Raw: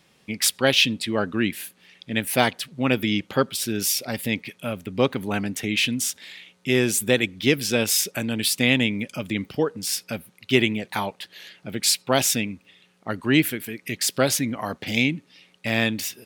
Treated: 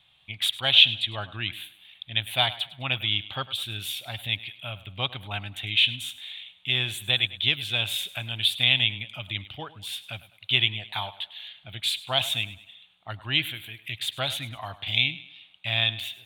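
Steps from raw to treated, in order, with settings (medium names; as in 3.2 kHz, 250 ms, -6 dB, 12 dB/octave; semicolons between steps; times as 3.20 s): FFT filter 110 Hz 0 dB, 220 Hz -21 dB, 320 Hz -18 dB, 470 Hz -21 dB, 690 Hz -4 dB, 1.9 kHz -7 dB, 3.6 kHz +9 dB, 5.1 kHz -24 dB, 8.9 kHz -13 dB; thinning echo 103 ms, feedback 41%, high-pass 150 Hz, level -16.5 dB; trim -1 dB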